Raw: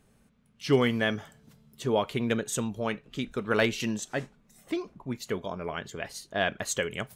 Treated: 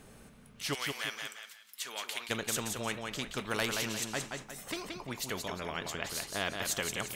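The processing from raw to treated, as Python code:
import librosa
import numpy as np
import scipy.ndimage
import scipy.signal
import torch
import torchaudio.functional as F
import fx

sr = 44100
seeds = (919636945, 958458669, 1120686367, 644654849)

y = fx.cheby1_highpass(x, sr, hz=2000.0, order=2, at=(0.73, 2.29), fade=0.02)
y = fx.echo_feedback(y, sr, ms=176, feedback_pct=20, wet_db=-9.0)
y = fx.spectral_comp(y, sr, ratio=2.0)
y = y * 10.0 ** (-5.5 / 20.0)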